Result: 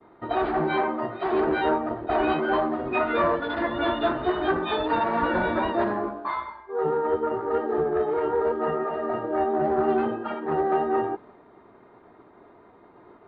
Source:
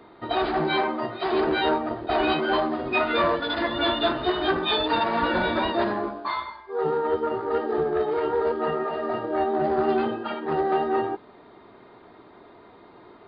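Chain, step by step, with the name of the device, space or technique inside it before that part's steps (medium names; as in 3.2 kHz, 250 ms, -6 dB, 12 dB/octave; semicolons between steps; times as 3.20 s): hearing-loss simulation (low-pass 2 kHz 12 dB/octave; expander -46 dBFS)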